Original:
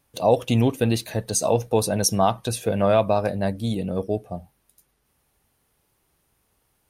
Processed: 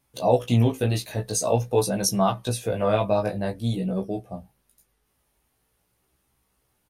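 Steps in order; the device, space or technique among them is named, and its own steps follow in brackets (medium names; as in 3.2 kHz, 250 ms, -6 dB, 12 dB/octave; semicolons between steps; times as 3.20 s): double-tracked vocal (doubling 16 ms -7.5 dB; chorus 0.47 Hz, delay 15 ms, depth 4.2 ms)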